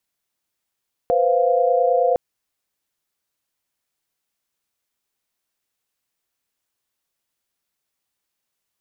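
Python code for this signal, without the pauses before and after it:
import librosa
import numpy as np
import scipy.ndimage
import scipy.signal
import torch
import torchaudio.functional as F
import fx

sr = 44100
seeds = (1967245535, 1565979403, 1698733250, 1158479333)

y = fx.chord(sr, length_s=1.06, notes=(71, 72, 77), wave='sine', level_db=-19.0)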